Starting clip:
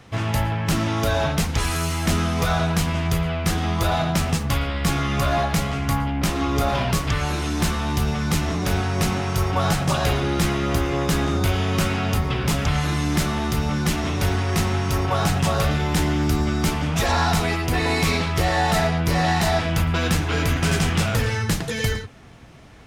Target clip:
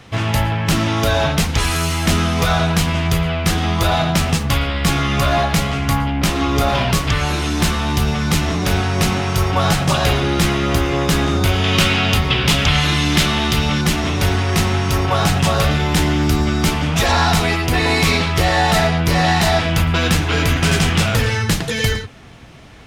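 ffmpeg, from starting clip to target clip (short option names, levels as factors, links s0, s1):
-af "asetnsamples=n=441:p=0,asendcmd='11.64 equalizer g 11;13.81 equalizer g 3.5',equalizer=f=3200:t=o:w=1.3:g=3.5,volume=1.68"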